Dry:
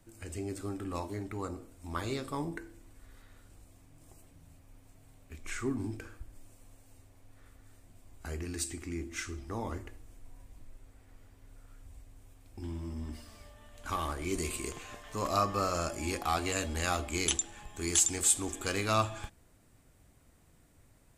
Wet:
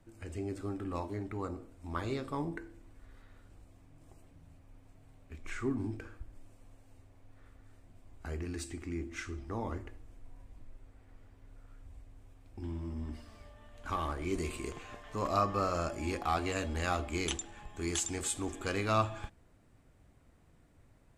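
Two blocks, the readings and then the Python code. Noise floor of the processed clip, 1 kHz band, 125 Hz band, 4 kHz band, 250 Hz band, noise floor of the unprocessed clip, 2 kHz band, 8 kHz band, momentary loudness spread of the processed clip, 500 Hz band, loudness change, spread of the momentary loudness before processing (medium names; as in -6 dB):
-63 dBFS, -0.5 dB, 0.0 dB, -5.0 dB, 0.0 dB, -63 dBFS, -2.0 dB, -9.5 dB, 19 LU, 0.0 dB, -3.0 dB, 17 LU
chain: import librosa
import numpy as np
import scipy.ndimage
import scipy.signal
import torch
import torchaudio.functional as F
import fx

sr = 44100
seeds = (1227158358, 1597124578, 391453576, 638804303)

y = fx.lowpass(x, sr, hz=2500.0, slope=6)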